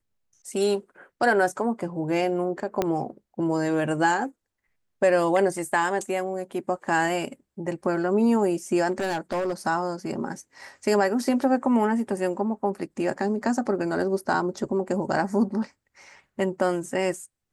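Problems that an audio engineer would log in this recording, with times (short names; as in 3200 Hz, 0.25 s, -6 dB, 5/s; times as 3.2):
2.82 pop -10 dBFS
8.91–9.53 clipped -22.5 dBFS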